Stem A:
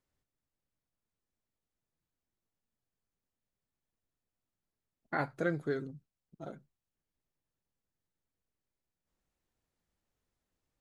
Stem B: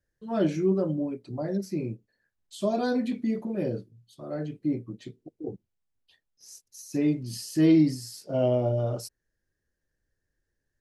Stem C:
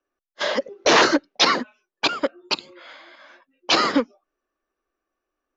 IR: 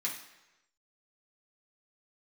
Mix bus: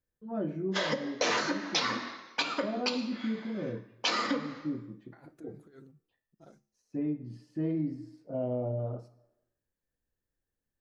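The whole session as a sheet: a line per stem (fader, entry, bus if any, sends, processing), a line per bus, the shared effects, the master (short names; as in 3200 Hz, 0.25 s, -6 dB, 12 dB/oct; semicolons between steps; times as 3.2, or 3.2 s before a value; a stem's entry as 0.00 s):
-12.0 dB, 0.00 s, no send, negative-ratio compressor -37 dBFS, ratio -0.5
-4.0 dB, 0.00 s, send -8 dB, LPF 1200 Hz 12 dB/oct
+1.0 dB, 0.35 s, send -6 dB, high shelf 4400 Hz -5 dB; auto duck -7 dB, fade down 1.75 s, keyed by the second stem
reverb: on, RT60 1.0 s, pre-delay 3 ms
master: high shelf 8500 Hz +10.5 dB; resonator 71 Hz, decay 0.47 s, harmonics odd, mix 40%; compressor 5:1, threshold -27 dBFS, peak gain reduction 11.5 dB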